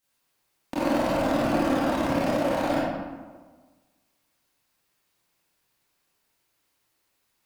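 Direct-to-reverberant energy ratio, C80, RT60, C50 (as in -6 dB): -10.5 dB, 0.0 dB, 1.4 s, -3.5 dB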